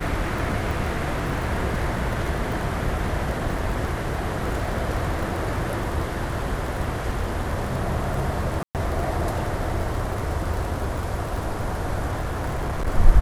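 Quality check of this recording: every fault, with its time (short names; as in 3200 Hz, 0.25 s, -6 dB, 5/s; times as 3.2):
crackle 23/s -27 dBFS
8.63–8.75 gap 0.118 s
12.1–12.88 clipped -22 dBFS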